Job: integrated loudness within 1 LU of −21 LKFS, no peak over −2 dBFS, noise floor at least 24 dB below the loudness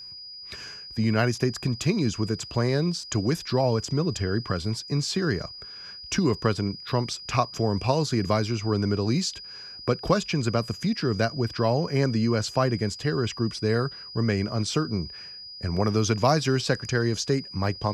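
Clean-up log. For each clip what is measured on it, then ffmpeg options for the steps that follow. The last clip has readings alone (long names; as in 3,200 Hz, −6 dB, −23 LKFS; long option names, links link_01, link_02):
interfering tone 4,900 Hz; level of the tone −39 dBFS; integrated loudness −26.0 LKFS; sample peak −6.0 dBFS; target loudness −21.0 LKFS
→ -af "bandreject=frequency=4900:width=30"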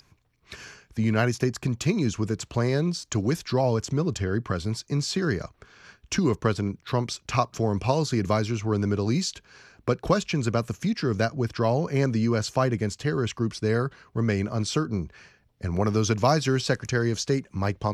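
interfering tone none found; integrated loudness −26.0 LKFS; sample peak −6.0 dBFS; target loudness −21.0 LKFS
→ -af "volume=5dB,alimiter=limit=-2dB:level=0:latency=1"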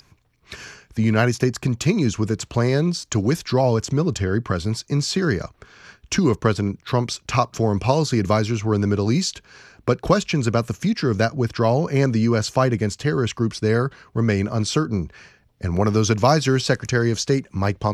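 integrated loudness −21.0 LKFS; sample peak −2.0 dBFS; background noise floor −60 dBFS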